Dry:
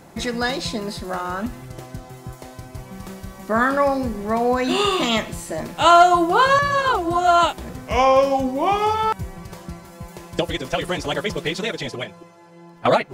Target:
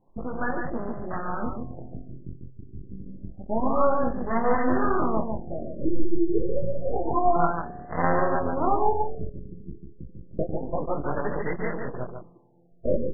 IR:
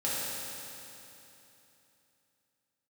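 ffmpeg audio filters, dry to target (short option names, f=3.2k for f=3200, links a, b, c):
-filter_complex "[0:a]flanger=delay=19:depth=4.9:speed=0.29,aeval=exprs='max(val(0),0)':c=same,afwtdn=0.0158,asettb=1/sr,asplit=3[a][b][c];[a]atrim=end=7.364[d];[b]atrim=start=7.36:end=8.53,asetpts=PTS-STARTPTS,afade=t=in:d=0.004:c=qsin,afade=t=out:st=1.166:d=0.004:c=qsin,tremolo=f=170:d=1[e];[c]atrim=start=8.526[f];[d][e]acrossfade=d=0.004:c1=hsin:c2=qsin[g];[g][f]acrossfade=d=0.004:c1=qsin:c2=hsin,aecho=1:1:145:0.562,asplit=2[h][i];[1:a]atrim=start_sample=2205,asetrate=57330,aresample=44100,adelay=59[j];[i][j]afir=irnorm=-1:irlink=0,volume=-27dB[k];[h][k]amix=inputs=2:normalize=0,afftfilt=real='re*lt(b*sr/1024,500*pow(2100/500,0.5+0.5*sin(2*PI*0.28*pts/sr)))':imag='im*lt(b*sr/1024,500*pow(2100/500,0.5+0.5*sin(2*PI*0.28*pts/sr)))':win_size=1024:overlap=0.75,volume=3dB"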